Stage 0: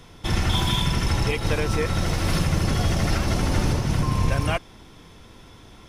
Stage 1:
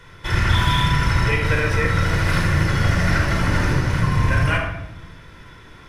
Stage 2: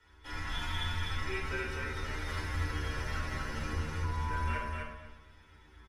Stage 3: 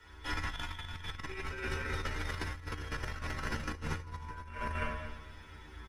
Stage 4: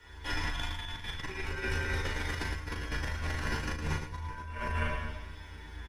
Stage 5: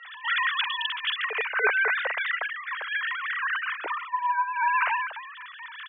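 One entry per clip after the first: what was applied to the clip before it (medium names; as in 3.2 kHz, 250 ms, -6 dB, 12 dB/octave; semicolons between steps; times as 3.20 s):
peaking EQ 1.7 kHz +13.5 dB 1.1 oct; simulated room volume 3200 m³, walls furnished, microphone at 4.8 m; trim -5.5 dB
inharmonic resonator 70 Hz, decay 0.34 s, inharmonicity 0.002; frequency shift -58 Hz; on a send: feedback delay 251 ms, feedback 16%, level -3.5 dB; on the sum: trim -8.5 dB
compressor with a negative ratio -39 dBFS, ratio -0.5; trim +2 dB
band-stop 1.3 kHz, Q 9.7; on a send: loudspeakers at several distances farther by 13 m -5 dB, 38 m -7 dB; on the sum: trim +2 dB
formants replaced by sine waves; Chebyshev high-pass 410 Hz, order 4; distance through air 66 m; trim +7.5 dB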